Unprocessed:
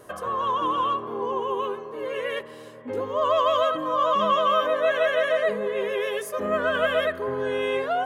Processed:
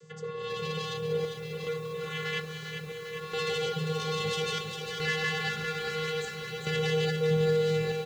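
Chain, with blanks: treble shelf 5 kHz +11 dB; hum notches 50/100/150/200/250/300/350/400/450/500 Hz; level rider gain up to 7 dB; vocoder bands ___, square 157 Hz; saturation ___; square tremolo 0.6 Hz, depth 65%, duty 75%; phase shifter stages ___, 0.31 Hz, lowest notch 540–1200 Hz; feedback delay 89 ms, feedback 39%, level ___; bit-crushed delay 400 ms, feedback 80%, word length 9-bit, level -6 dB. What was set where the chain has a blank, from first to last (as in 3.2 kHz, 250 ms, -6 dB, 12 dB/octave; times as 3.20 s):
16, -18.5 dBFS, 2, -22 dB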